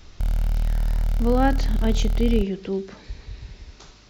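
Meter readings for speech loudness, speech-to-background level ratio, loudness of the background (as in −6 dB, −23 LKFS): −25.0 LKFS, 1.5 dB, −26.5 LKFS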